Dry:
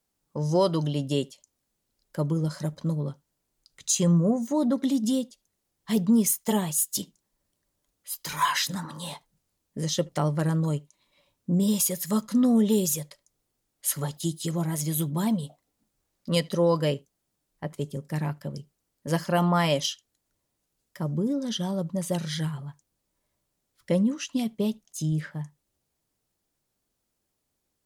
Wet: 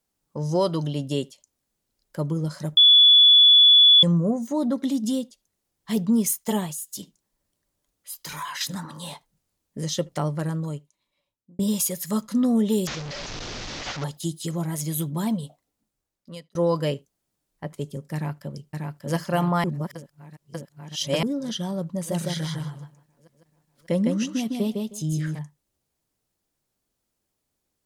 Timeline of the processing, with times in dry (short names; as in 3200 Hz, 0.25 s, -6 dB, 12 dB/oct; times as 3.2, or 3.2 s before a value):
2.77–4.03 bleep 3430 Hz -10 dBFS
6.66–8.61 compressor 4:1, threshold -31 dBFS
10.14–11.59 fade out
12.87–14.04 delta modulation 32 kbps, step -27.5 dBFS
15.45–16.55 fade out
18.14–19.14 echo throw 0.59 s, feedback 60%, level -3 dB
19.64–21.23 reverse
21.93–25.39 feedback echo 0.156 s, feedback 16%, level -3 dB